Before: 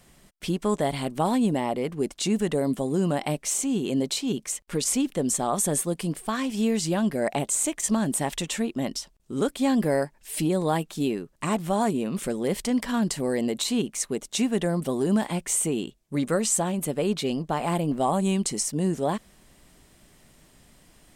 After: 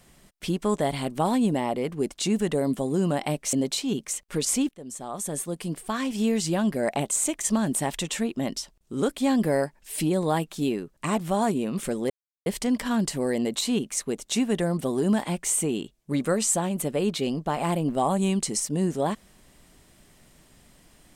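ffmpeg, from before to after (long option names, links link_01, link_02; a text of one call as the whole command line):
ffmpeg -i in.wav -filter_complex "[0:a]asplit=4[link_01][link_02][link_03][link_04];[link_01]atrim=end=3.532[link_05];[link_02]atrim=start=3.918:end=5.08,asetpts=PTS-STARTPTS,afade=type=out:start_time=1.158:duration=0.004:curve=hsin:silence=0.0841395[link_06];[link_03]atrim=start=5.08:end=12.49,asetpts=PTS-STARTPTS,afade=type=in:duration=1.4:silence=0.0841395,afade=type=out:start_time=7.406:duration=0.004:curve=hsin,apad=pad_dur=0.36[link_07];[link_04]atrim=start=12.49,asetpts=PTS-STARTPTS,afade=type=in:duration=0.004:curve=hsin[link_08];[link_06][link_07][link_08]concat=n=3:v=0:a=1[link_09];[link_05][link_09]acrossfade=duration=0.004:curve1=hsin:curve2=hsin" out.wav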